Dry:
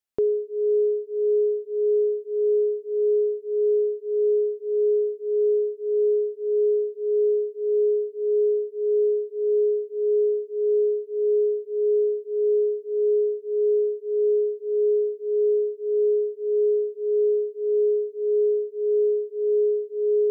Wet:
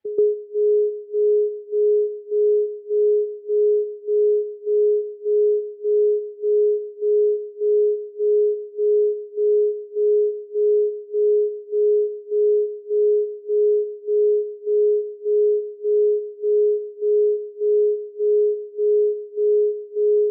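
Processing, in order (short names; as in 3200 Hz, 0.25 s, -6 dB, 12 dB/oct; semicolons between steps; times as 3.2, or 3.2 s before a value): spectral contrast raised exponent 1.7; on a send: reverse echo 0.132 s -17 dB; on the sum: reverb removal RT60 1.1 s; air absorption 380 m; three-band squash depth 40%; gain +6.5 dB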